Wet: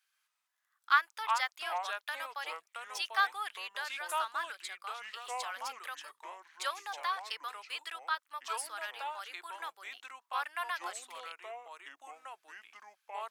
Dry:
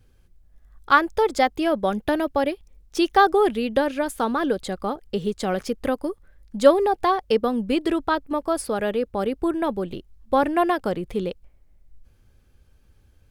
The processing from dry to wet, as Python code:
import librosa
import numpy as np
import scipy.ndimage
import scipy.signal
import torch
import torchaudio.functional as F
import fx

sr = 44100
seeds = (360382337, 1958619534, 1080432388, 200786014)

y = scipy.signal.sosfilt(scipy.signal.butter(4, 1200.0, 'highpass', fs=sr, output='sos'), x)
y = fx.echo_pitch(y, sr, ms=130, semitones=-4, count=2, db_per_echo=-6.0)
y = F.gain(torch.from_numpy(y), -6.5).numpy()